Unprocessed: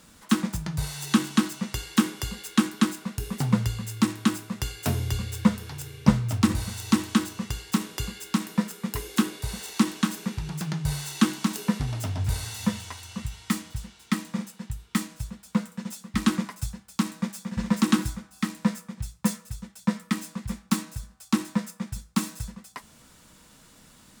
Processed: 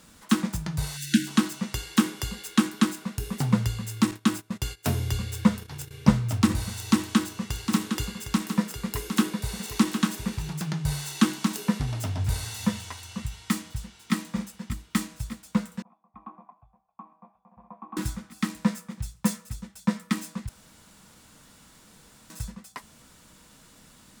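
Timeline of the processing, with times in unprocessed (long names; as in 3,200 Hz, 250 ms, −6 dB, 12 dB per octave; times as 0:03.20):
0:00.97–0:01.27: time-frequency box erased 340–1,400 Hz
0:04.11–0:05.91: noise gate −39 dBFS, range −17 dB
0:06.74–0:10.53: single-tap delay 759 ms −8 dB
0:13.33–0:14.13: delay throw 600 ms, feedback 80%, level −14 dB
0:15.82–0:17.97: formant resonators in series a
0:20.49–0:22.30: fill with room tone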